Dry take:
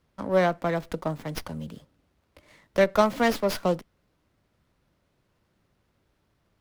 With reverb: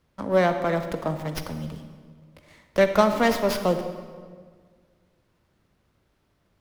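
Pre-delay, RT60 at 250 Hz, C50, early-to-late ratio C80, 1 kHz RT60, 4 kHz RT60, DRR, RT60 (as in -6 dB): 36 ms, 2.1 s, 8.5 dB, 9.5 dB, 1.6 s, 1.2 s, 8.0 dB, 1.7 s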